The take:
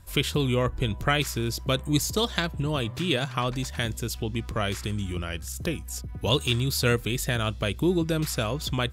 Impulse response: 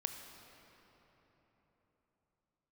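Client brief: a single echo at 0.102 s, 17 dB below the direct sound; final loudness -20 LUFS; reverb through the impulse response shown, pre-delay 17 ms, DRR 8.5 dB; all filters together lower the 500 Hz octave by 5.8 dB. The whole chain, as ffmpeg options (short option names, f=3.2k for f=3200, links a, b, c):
-filter_complex "[0:a]equalizer=f=500:t=o:g=-7.5,aecho=1:1:102:0.141,asplit=2[a][b];[1:a]atrim=start_sample=2205,adelay=17[c];[b][c]afir=irnorm=-1:irlink=0,volume=-8dB[d];[a][d]amix=inputs=2:normalize=0,volume=7.5dB"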